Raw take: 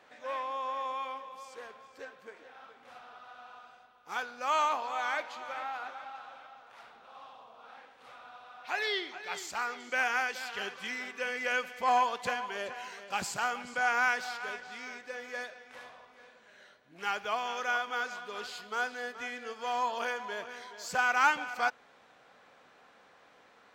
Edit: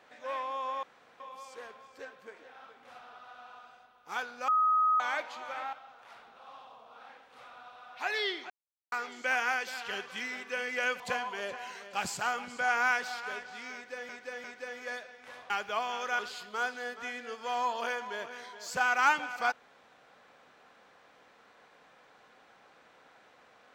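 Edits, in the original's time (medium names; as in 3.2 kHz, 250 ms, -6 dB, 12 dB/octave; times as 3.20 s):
0.83–1.20 s: room tone
4.48–5.00 s: bleep 1.26 kHz -22.5 dBFS
5.73–6.41 s: delete
9.18–9.60 s: mute
11.68–12.17 s: delete
14.91–15.26 s: loop, 3 plays
15.97–17.06 s: delete
17.75–18.37 s: delete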